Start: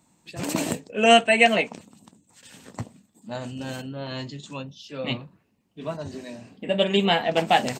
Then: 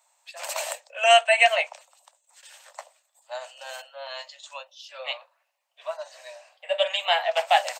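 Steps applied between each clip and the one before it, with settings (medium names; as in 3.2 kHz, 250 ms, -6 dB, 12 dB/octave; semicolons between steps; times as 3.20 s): steep high-pass 550 Hz 96 dB/octave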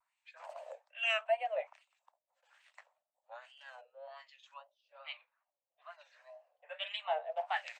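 wah-wah 1.2 Hz 430–2500 Hz, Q 2.5; wow and flutter 110 cents; trim -7.5 dB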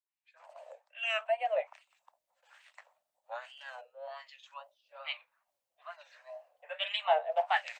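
fade-in on the opening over 1.64 s; random flutter of the level, depth 60%; trim +9 dB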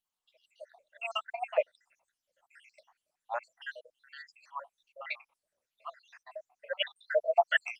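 random holes in the spectrogram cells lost 76%; trim +7.5 dB; Opus 32 kbps 48 kHz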